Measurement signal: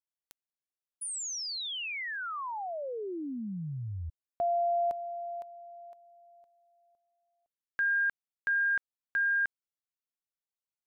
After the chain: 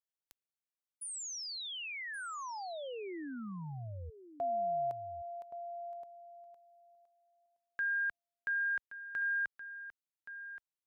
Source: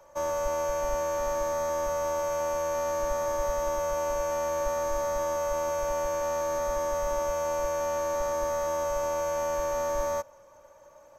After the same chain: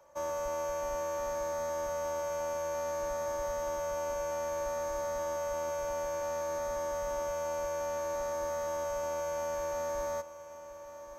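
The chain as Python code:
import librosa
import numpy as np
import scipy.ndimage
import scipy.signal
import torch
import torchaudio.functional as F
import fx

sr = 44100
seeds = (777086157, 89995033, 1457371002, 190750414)

y = fx.highpass(x, sr, hz=53.0, slope=6)
y = y + 10.0 ** (-13.0 / 20.0) * np.pad(y, (int(1123 * sr / 1000.0), 0))[:len(y)]
y = y * librosa.db_to_amplitude(-5.5)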